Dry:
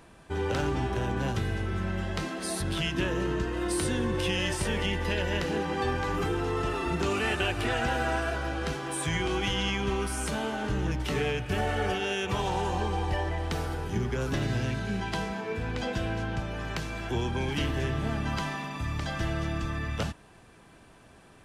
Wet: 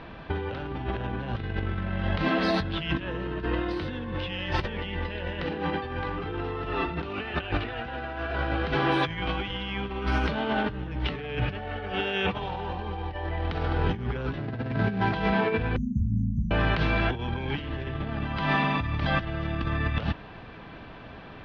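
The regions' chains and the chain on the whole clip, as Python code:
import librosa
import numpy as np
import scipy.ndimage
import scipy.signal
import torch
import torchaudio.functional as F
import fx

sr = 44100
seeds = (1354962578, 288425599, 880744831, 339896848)

y = fx.chain(x, sr, fx.median_filter(points=15),
    fx.highpass(hz=81.0, slope=24), at=(14.38, 15.14))
y = fx.chain(y, sr, fx.brickwall_bandstop(low_hz=270.0, high_hz=5900.0),
    fx.ensemble(), at=(15.76, 16.51))
y = scipy.signal.sosfilt(scipy.signal.cheby2(4, 40, 7300.0, 'lowpass', fs=sr, output='sos'), y)
y = fx.notch(y, sr, hz=370.0, q=12.0)
y = fx.over_compress(y, sr, threshold_db=-34.0, ratio=-0.5)
y = F.gain(torch.from_numpy(y), 6.5).numpy()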